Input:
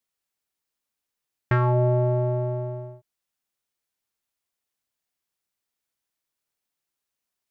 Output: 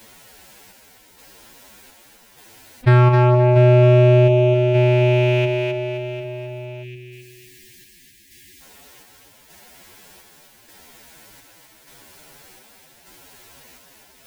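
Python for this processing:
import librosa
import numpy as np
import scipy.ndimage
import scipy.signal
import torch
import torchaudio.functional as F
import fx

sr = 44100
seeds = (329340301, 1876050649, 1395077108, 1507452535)

y = fx.rattle_buzz(x, sr, strikes_db=-37.0, level_db=-25.0)
y = fx.chopper(y, sr, hz=1.6, depth_pct=60, duty_pct=60)
y = fx.echo_thinned(y, sr, ms=138, feedback_pct=28, hz=200.0, wet_db=-8.0)
y = np.clip(10.0 ** (15.5 / 20.0) * y, -1.0, 1.0) / 10.0 ** (15.5 / 20.0)
y = fx.high_shelf(y, sr, hz=2400.0, db=-9.0)
y = fx.notch(y, sr, hz=1200.0, q=6.6)
y = fx.echo_feedback(y, sr, ms=394, feedback_pct=29, wet_db=-24)
y = fx.spec_box(y, sr, start_s=3.59, length_s=0.94, low_hz=400.0, high_hz=1600.0, gain_db=-28)
y = fx.stretch_vocoder(y, sr, factor=1.9)
y = fx.env_flatten(y, sr, amount_pct=50)
y = y * librosa.db_to_amplitude(8.5)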